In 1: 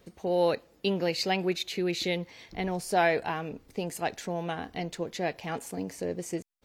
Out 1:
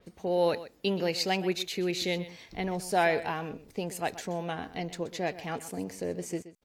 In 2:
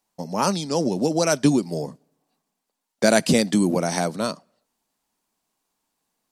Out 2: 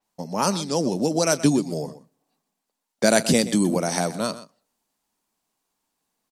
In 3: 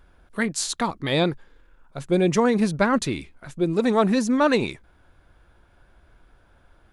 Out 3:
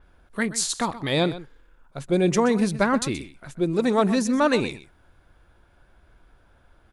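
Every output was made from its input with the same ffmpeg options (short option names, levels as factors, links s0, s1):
-filter_complex "[0:a]asplit=2[s0][s1];[s1]aecho=0:1:126:0.178[s2];[s0][s2]amix=inputs=2:normalize=0,adynamicequalizer=threshold=0.0126:dfrequency=5300:dqfactor=0.7:tfrequency=5300:tqfactor=0.7:attack=5:release=100:ratio=0.375:range=2:mode=boostabove:tftype=highshelf,volume=0.891"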